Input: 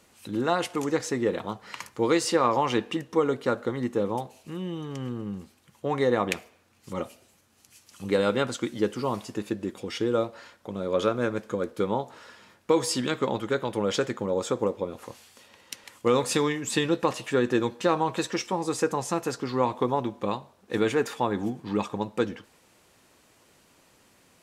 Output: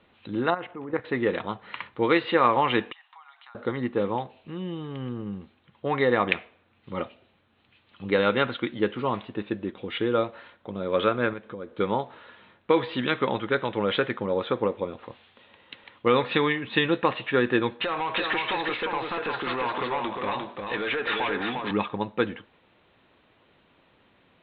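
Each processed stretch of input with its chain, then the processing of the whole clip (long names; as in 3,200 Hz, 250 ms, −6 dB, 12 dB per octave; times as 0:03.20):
0:00.50–0:01.05: output level in coarse steps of 12 dB + low-pass filter 1,700 Hz
0:02.92–0:03.55: Chebyshev high-pass filter 750 Hz, order 6 + downward compressor, threshold −47 dBFS
0:11.33–0:11.73: notch filter 4,500 Hz, Q 6 + downward compressor 2 to 1, threshold −39 dBFS
0:17.81–0:21.71: downward compressor 4 to 1, threshold −33 dBFS + mid-hump overdrive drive 19 dB, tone 7,700 Hz, clips at −21.5 dBFS + single-tap delay 352 ms −4 dB
whole clip: Butterworth low-pass 3,900 Hz 96 dB per octave; dynamic equaliser 2,000 Hz, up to +7 dB, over −42 dBFS, Q 0.79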